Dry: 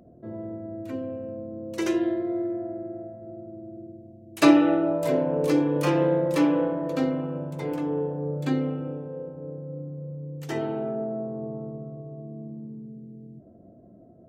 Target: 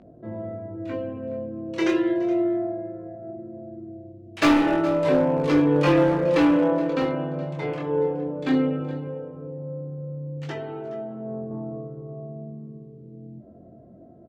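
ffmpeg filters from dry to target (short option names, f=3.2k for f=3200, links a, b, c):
-filter_complex "[0:a]lowpass=3.3k,tiltshelf=f=1.1k:g=-3,asettb=1/sr,asplit=3[a][b][c];[a]atrim=end=9.104[d];[b]atrim=start=9.1:end=11.51,asetpts=PTS-STARTPTS,afade=t=in:d=0.004:c=qsin,afade=t=out:st=2.406:d=0.004:c=qsin,acompressor=threshold=-36dB:ratio=5[e];[c]atrim=start=11.506[f];[d][e]acrossfade=d=0.004:c1=hsin:c2=qsin[g];[g][f]acrossfade=d=0.004:c1=qsin:c2=hsin,volume=20dB,asoftclip=hard,volume=-20dB,flanger=delay=19:depth=6.7:speed=0.2,aecho=1:1:421:0.133,volume=8.5dB"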